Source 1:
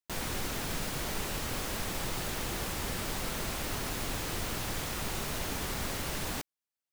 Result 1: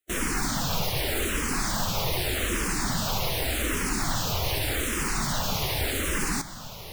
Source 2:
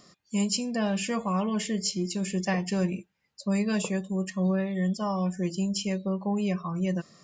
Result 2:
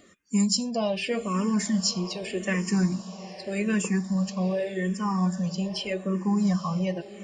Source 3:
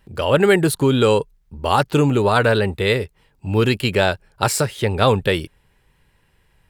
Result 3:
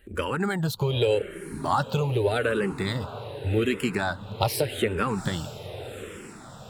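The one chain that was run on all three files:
spectral magnitudes quantised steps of 15 dB
downward compressor, threshold −22 dBFS
feedback delay with all-pass diffusion 823 ms, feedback 55%, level −14 dB
frequency shifter mixed with the dry sound −0.84 Hz
loudness normalisation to −27 LKFS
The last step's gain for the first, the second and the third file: +11.0, +5.5, +3.5 decibels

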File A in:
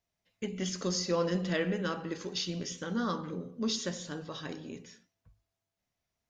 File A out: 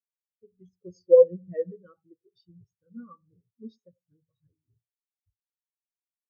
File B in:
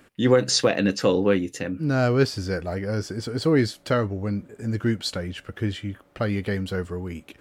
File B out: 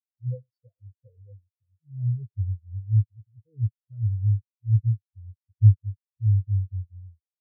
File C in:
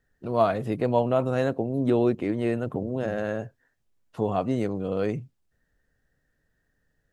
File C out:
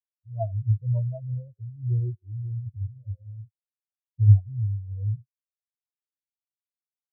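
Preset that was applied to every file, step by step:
low shelf with overshoot 140 Hz +11 dB, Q 3
far-end echo of a speakerphone 100 ms, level −12 dB
every bin expanded away from the loudest bin 4 to 1
normalise the peak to −6 dBFS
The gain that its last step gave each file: +13.5, −2.5, +2.5 decibels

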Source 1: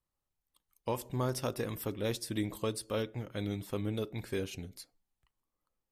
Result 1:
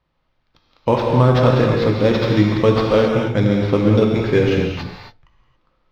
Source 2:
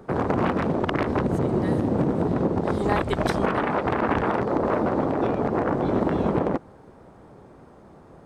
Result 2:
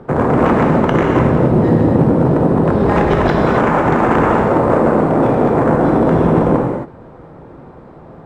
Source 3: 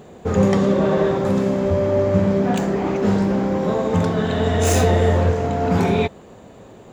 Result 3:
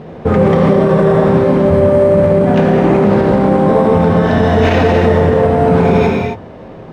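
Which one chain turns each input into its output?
mains-hum notches 50/100 Hz
speech leveller 2 s
sample-rate reduction 9,000 Hz, jitter 0%
high-frequency loss of the air 240 metres
reverb whose tail is shaped and stops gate 300 ms flat, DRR −0.5 dB
boost into a limiter +9.5 dB
normalise the peak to −2 dBFS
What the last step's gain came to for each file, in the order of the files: +9.0, −1.0, −1.0 decibels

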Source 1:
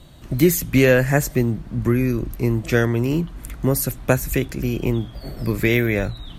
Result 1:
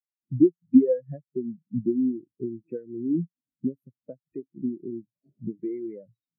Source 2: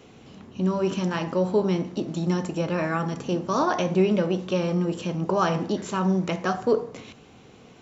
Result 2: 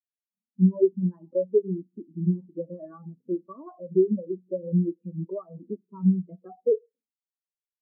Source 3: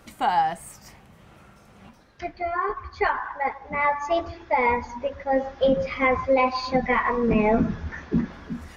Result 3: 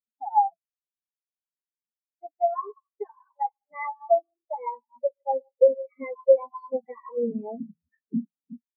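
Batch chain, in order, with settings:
high-pass filter 170 Hz 12 dB per octave
high-shelf EQ 3,800 Hz −5.5 dB
downward compressor 20 to 1, threshold −25 dBFS
every bin expanded away from the loudest bin 4 to 1
loudness normalisation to −27 LKFS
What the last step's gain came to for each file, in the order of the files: +8.0, +5.0, +9.0 decibels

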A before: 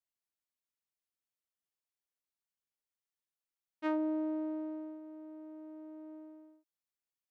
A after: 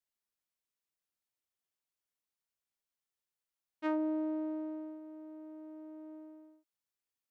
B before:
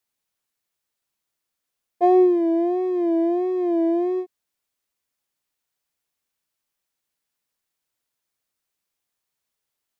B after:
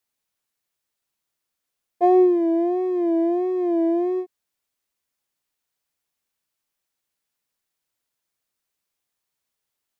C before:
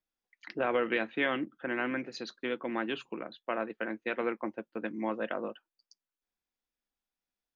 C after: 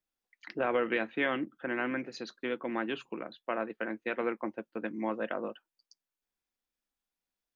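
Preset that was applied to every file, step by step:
dynamic equaliser 3,800 Hz, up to −3 dB, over −50 dBFS, Q 1.3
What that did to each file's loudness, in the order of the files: 0.0, 0.0, 0.0 LU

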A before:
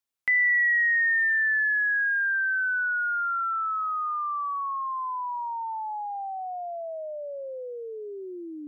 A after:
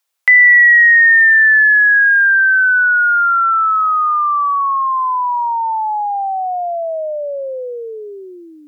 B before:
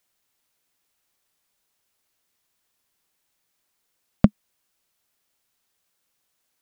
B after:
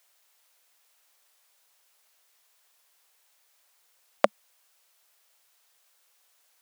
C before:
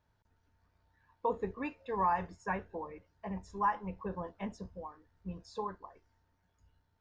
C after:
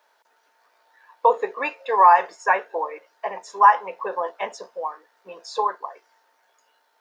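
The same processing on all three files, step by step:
high-pass filter 490 Hz 24 dB per octave
normalise the peak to −3 dBFS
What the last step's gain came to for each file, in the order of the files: +14.5, +8.0, +17.0 decibels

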